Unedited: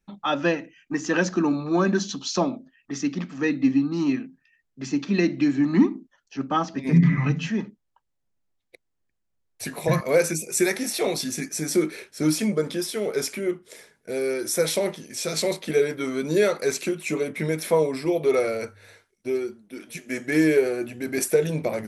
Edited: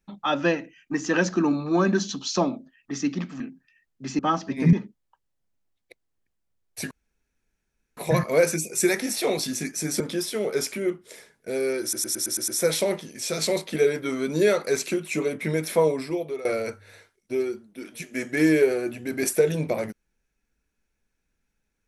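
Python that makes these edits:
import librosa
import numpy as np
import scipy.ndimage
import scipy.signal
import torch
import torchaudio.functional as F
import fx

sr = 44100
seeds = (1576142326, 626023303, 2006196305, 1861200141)

y = fx.edit(x, sr, fx.cut(start_s=3.4, length_s=0.77),
    fx.cut(start_s=4.96, length_s=1.5),
    fx.cut(start_s=7.0, length_s=0.56),
    fx.insert_room_tone(at_s=9.74, length_s=1.06),
    fx.cut(start_s=11.77, length_s=0.84),
    fx.stutter(start_s=14.43, slice_s=0.11, count=7),
    fx.fade_out_to(start_s=17.86, length_s=0.54, floor_db=-19.5), tone=tone)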